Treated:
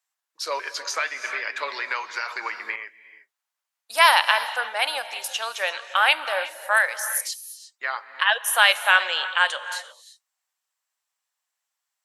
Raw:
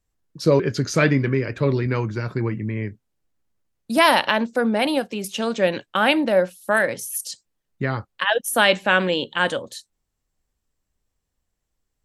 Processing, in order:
high-pass filter 830 Hz 24 dB per octave
reverb whose tail is shaped and stops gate 380 ms rising, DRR 12 dB
0:00.91–0:02.76: multiband upward and downward compressor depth 100%
level +2 dB

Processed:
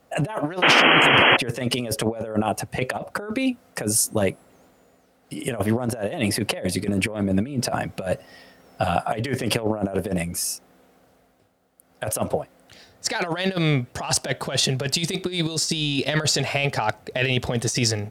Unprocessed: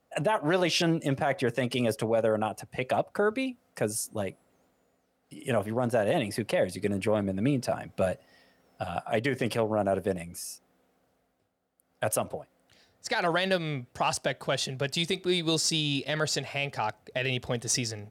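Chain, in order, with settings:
compressor whose output falls as the input rises −31 dBFS, ratio −0.5
sound drawn into the spectrogram noise, 0:00.62–0:01.37, 220–3,300 Hz −24 dBFS
level +8.5 dB

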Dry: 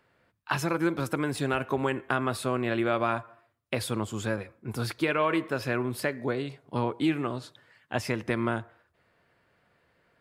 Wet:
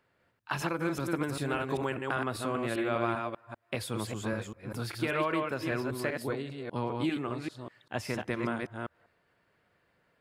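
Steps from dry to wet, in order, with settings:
delay that plays each chunk backwards 197 ms, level −3.5 dB
level −5 dB

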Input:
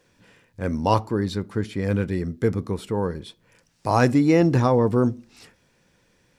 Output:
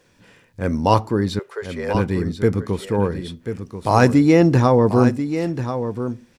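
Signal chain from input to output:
0:01.39–0:01.95: Chebyshev high-pass with heavy ripple 380 Hz, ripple 3 dB
on a send: single-tap delay 1,038 ms −9.5 dB
on the sum: level +4 dB

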